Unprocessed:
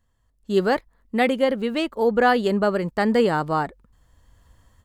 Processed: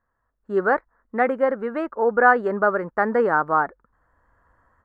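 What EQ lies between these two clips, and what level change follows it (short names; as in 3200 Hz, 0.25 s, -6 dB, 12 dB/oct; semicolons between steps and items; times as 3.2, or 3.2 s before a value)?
tone controls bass -11 dB, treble -8 dB; resonant high shelf 2200 Hz -14 dB, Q 3; 0.0 dB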